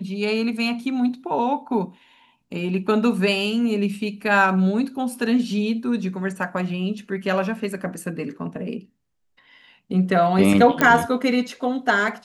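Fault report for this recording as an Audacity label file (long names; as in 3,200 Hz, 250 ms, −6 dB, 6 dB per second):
10.810000	10.810000	click −5 dBFS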